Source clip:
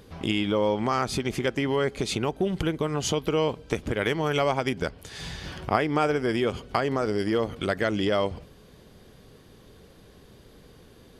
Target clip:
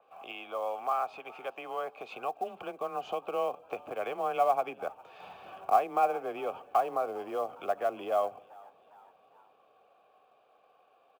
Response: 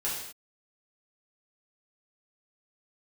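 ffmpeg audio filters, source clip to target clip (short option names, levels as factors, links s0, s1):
-filter_complex "[0:a]acrossover=split=470 2900:gain=0.2 1 0.251[s0][s1][s2];[s0][s1][s2]amix=inputs=3:normalize=0,acrossover=split=400[s3][s4];[s3]dynaudnorm=f=240:g=21:m=3.98[s5];[s5][s4]amix=inputs=2:normalize=0,asoftclip=type=tanh:threshold=0.299,asplit=3[s6][s7][s8];[s6]bandpass=f=730:t=q:w=8,volume=1[s9];[s7]bandpass=f=1090:t=q:w=8,volume=0.501[s10];[s8]bandpass=f=2440:t=q:w=8,volume=0.355[s11];[s9][s10][s11]amix=inputs=3:normalize=0,acrusher=bits=7:mode=log:mix=0:aa=0.000001,asplit=2[s12][s13];[s13]asplit=3[s14][s15][s16];[s14]adelay=406,afreqshift=85,volume=0.0631[s17];[s15]adelay=812,afreqshift=170,volume=0.0324[s18];[s16]adelay=1218,afreqshift=255,volume=0.0164[s19];[s17][s18][s19]amix=inputs=3:normalize=0[s20];[s12][s20]amix=inputs=2:normalize=0,afreqshift=19,adynamicequalizer=threshold=0.00251:dfrequency=3600:dqfactor=0.7:tfrequency=3600:tqfactor=0.7:attack=5:release=100:ratio=0.375:range=2:mode=cutabove:tftype=highshelf,volume=1.88"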